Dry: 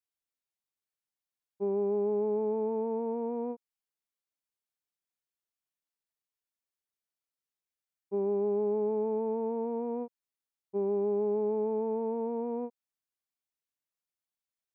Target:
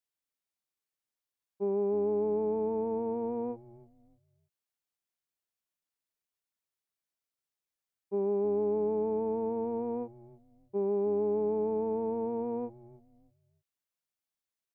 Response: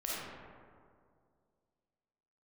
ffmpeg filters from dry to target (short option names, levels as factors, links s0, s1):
-filter_complex "[0:a]asplit=4[s0][s1][s2][s3];[s1]adelay=309,afreqshift=-110,volume=0.106[s4];[s2]adelay=618,afreqshift=-220,volume=0.0339[s5];[s3]adelay=927,afreqshift=-330,volume=0.0108[s6];[s0][s4][s5][s6]amix=inputs=4:normalize=0"